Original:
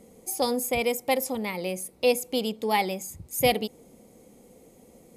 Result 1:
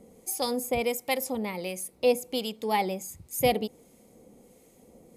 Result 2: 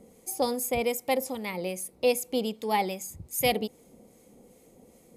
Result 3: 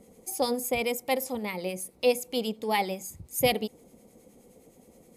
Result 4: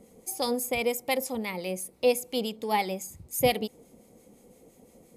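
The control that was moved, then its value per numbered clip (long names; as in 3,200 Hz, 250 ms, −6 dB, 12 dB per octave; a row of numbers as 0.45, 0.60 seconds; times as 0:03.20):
two-band tremolo in antiphase, speed: 1.4, 2.5, 9.6, 5.8 Hertz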